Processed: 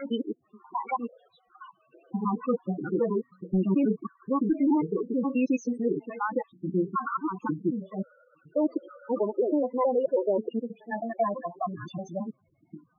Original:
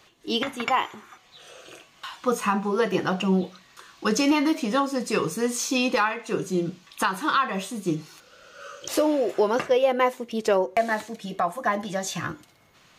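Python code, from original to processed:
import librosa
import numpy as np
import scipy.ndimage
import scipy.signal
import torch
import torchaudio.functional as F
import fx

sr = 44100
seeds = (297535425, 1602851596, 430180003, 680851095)

y = fx.block_reorder(x, sr, ms=107.0, group=5)
y = fx.lowpass(y, sr, hz=2000.0, slope=6)
y = fx.dynamic_eq(y, sr, hz=260.0, q=1.4, threshold_db=-35.0, ratio=4.0, max_db=5)
y = 10.0 ** (-13.5 / 20.0) * (np.abs((y / 10.0 ** (-13.5 / 20.0) + 3.0) % 4.0 - 2.0) - 1.0)
y = fx.spec_topn(y, sr, count=8)
y = y * librosa.db_to_amplitude(-3.5)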